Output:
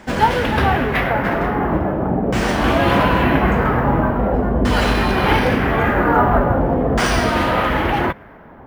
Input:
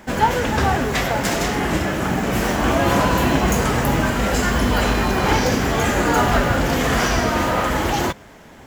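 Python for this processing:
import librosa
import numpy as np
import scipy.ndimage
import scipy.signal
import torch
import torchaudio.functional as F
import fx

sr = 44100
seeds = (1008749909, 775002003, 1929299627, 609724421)

y = fx.filter_lfo_lowpass(x, sr, shape='saw_down', hz=0.43, low_hz=560.0, high_hz=6600.0, q=1.2)
y = np.interp(np.arange(len(y)), np.arange(len(y))[::3], y[::3])
y = F.gain(torch.from_numpy(y), 2.0).numpy()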